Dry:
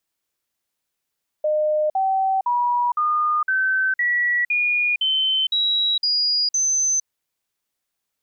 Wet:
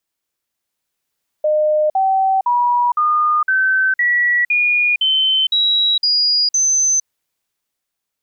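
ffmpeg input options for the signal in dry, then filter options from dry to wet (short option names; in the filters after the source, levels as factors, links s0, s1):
-f lavfi -i "aevalsrc='0.141*clip(min(mod(t,0.51),0.46-mod(t,0.51))/0.005,0,1)*sin(2*PI*610*pow(2,floor(t/0.51)/3)*mod(t,0.51))':d=5.61:s=44100"
-af "dynaudnorm=f=170:g=11:m=1.78"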